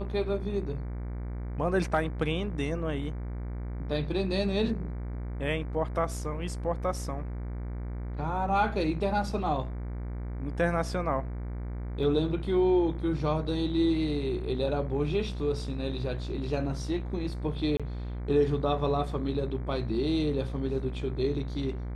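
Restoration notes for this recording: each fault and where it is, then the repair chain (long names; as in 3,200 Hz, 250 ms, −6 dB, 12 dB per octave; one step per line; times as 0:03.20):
mains buzz 60 Hz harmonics 39 −35 dBFS
0:12.03: drop-out 2.1 ms
0:17.77–0:17.80: drop-out 26 ms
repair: hum removal 60 Hz, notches 39
repair the gap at 0:12.03, 2.1 ms
repair the gap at 0:17.77, 26 ms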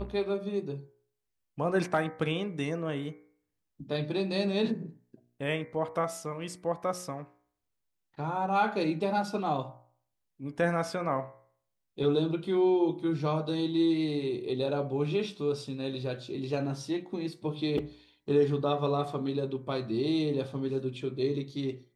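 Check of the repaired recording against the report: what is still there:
none of them is left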